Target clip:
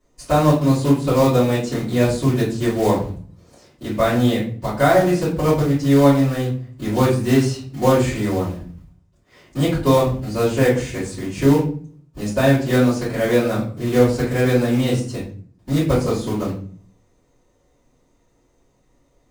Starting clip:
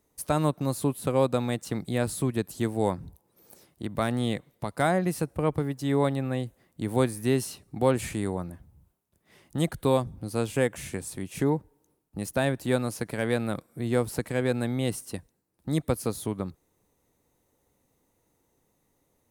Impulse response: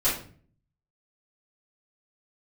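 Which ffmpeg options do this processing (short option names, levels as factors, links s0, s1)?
-filter_complex "[0:a]lowpass=f=7500:w=0.5412,lowpass=f=7500:w=1.3066,acrusher=bits=4:mode=log:mix=0:aa=0.000001[s0];[1:a]atrim=start_sample=2205[s1];[s0][s1]afir=irnorm=-1:irlink=0,volume=0.708"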